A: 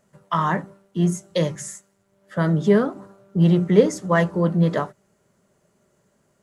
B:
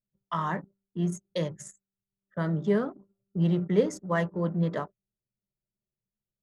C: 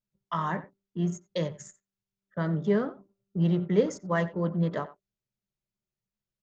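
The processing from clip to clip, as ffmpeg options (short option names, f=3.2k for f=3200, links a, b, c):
-af "anlmdn=10,volume=-8.5dB"
-filter_complex "[0:a]asplit=2[a][b];[b]adelay=90,highpass=300,lowpass=3.4k,asoftclip=type=hard:threshold=-19dB,volume=-16dB[c];[a][c]amix=inputs=2:normalize=0,aresample=16000,aresample=44100"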